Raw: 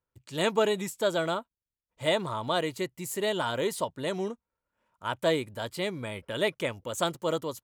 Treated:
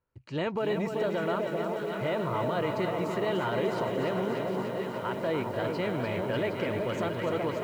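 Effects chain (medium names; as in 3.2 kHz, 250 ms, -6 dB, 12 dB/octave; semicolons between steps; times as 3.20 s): compression, threshold -26 dBFS, peak gain reduction 7 dB; distance through air 240 m; band-stop 3.5 kHz, Q 5.1; echo whose repeats swap between lows and highs 381 ms, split 960 Hz, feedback 74%, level -7.5 dB; peak limiter -27.5 dBFS, peak gain reduction 9.5 dB; bit-crushed delay 296 ms, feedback 80%, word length 10-bit, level -6.5 dB; trim +5 dB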